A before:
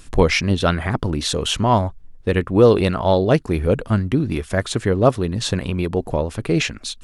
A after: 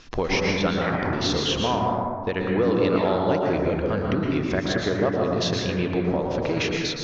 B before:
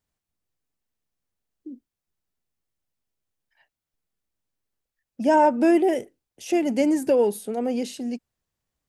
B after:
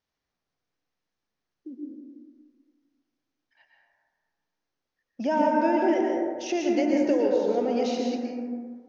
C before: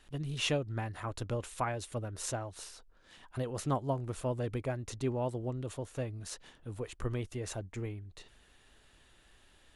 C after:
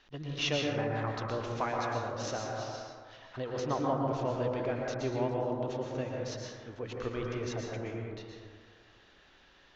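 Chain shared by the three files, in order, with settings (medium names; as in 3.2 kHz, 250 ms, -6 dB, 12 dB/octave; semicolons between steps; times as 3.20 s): steep low-pass 6.3 kHz 72 dB/octave; bass shelf 190 Hz -11.5 dB; compression 2.5:1, threshold -28 dBFS; plate-style reverb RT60 1.8 s, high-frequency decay 0.3×, pre-delay 105 ms, DRR -1.5 dB; trim +1.5 dB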